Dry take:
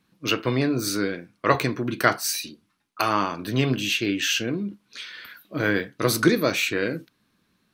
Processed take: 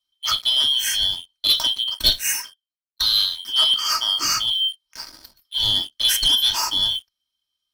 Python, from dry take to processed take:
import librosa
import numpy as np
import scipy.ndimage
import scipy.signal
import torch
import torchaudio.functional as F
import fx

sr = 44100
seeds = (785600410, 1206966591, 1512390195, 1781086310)

y = fx.band_shuffle(x, sr, order='2413')
y = fx.tone_stack(y, sr, knobs='5-5-5')
y = y + 0.59 * np.pad(y, (int(3.2 * sr / 1000.0), 0))[:len(y)]
y = fx.leveller(y, sr, passes=3)
y = fx.band_widen(y, sr, depth_pct=100, at=(1.84, 3.85))